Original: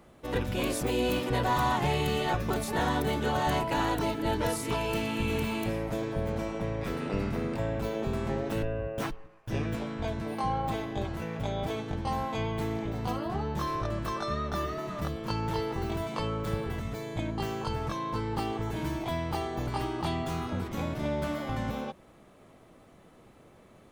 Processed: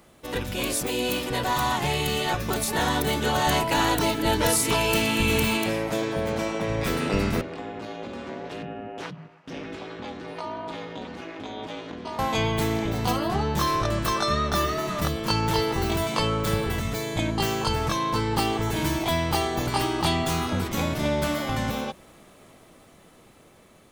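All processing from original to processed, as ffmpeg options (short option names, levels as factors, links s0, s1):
-filter_complex "[0:a]asettb=1/sr,asplit=3[s0][s1][s2];[s0]atrim=end=5.574[s3];[s1]atrim=start=5.57:end=6.69,asetpts=PTS-STARTPTS,afade=t=in:d=0.004:c=qsin,afade=t=out:st=1.116:d=0.004:c=qsin,highpass=f=180:p=1,highshelf=f=8600:g=-8.5[s4];[s2]atrim=start=6.686[s5];[s3][s4]acrossfade=d=0.004:c1=hsin:c2=qsin[s6];[s6][s5]acrossfade=d=0.004:c1=qsin:c2=hsin,asettb=1/sr,asplit=3[s7][s8][s9];[s7]atrim=end=7.414[s10];[s8]atrim=start=7.41:end=12.19,asetpts=PTS-STARTPTS,afade=t=in:d=0.004:c=qsin,afade=t=out:st=4.776:d=0.004:c=qsin,acompressor=threshold=0.01:ratio=2:attack=3.2:release=140:knee=1:detection=peak,aeval=exprs='val(0)*sin(2*PI*160*n/s)':c=same,highpass=130,lowpass=4600[s11];[s9]atrim=start=12.186[s12];[s10][s11]acrossfade=d=0.004:c1=hsin:c2=qsin[s13];[s13][s12]acrossfade=d=0.004:c1=qsin:c2=hsin,highshelf=f=2500:g=10,bandreject=f=60:t=h:w=6,bandreject=f=120:t=h:w=6,dynaudnorm=f=990:g=7:m=2.11"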